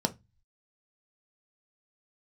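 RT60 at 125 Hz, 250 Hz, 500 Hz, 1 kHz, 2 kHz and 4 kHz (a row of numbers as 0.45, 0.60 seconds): 0.60, 0.30, 0.20, 0.20, 0.20, 0.20 seconds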